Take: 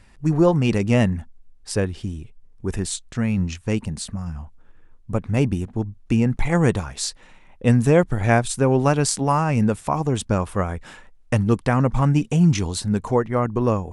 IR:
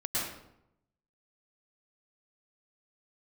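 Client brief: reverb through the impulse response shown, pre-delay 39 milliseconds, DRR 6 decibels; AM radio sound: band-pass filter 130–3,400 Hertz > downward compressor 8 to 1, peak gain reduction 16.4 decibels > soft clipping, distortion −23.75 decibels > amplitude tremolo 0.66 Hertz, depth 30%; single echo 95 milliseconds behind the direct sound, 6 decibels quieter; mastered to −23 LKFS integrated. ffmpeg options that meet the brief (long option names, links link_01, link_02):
-filter_complex "[0:a]aecho=1:1:95:0.501,asplit=2[link_01][link_02];[1:a]atrim=start_sample=2205,adelay=39[link_03];[link_02][link_03]afir=irnorm=-1:irlink=0,volume=-12.5dB[link_04];[link_01][link_04]amix=inputs=2:normalize=0,highpass=130,lowpass=3400,acompressor=threshold=-26dB:ratio=8,asoftclip=threshold=-18.5dB,tremolo=f=0.66:d=0.3,volume=10dB"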